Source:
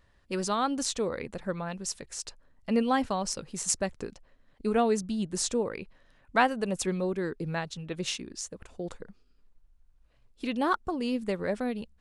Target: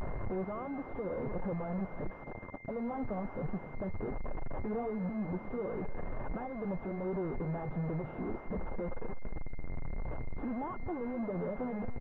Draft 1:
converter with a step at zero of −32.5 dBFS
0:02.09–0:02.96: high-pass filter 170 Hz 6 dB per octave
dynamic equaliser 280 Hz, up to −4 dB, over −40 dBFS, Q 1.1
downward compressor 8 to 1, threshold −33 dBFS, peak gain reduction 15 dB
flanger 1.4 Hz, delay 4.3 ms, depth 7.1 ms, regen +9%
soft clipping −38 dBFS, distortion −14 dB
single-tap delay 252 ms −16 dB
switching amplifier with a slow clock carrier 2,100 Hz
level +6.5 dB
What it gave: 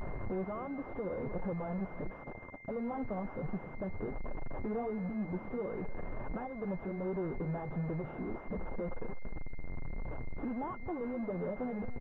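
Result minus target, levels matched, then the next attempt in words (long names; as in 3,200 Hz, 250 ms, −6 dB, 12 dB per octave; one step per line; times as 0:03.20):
converter with a step at zero: distortion −6 dB
converter with a step at zero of −24 dBFS
0:02.09–0:02.96: high-pass filter 170 Hz 6 dB per octave
dynamic equaliser 280 Hz, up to −4 dB, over −40 dBFS, Q 1.1
downward compressor 8 to 1, threshold −33 dBFS, peak gain reduction 16 dB
flanger 1.4 Hz, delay 4.3 ms, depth 7.1 ms, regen +9%
soft clipping −38 dBFS, distortion −14 dB
single-tap delay 252 ms −16 dB
switching amplifier with a slow clock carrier 2,100 Hz
level +6.5 dB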